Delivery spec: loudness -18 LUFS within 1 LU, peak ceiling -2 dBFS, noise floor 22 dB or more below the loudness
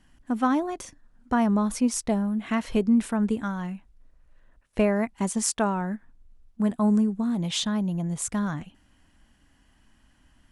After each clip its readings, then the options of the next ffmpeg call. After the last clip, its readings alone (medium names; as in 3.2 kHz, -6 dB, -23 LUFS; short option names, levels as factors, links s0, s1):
loudness -26.0 LUFS; peak level -8.0 dBFS; loudness target -18.0 LUFS
-> -af "volume=2.51,alimiter=limit=0.794:level=0:latency=1"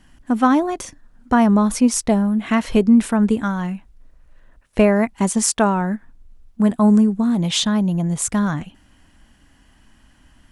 loudness -18.0 LUFS; peak level -2.0 dBFS; noise floor -55 dBFS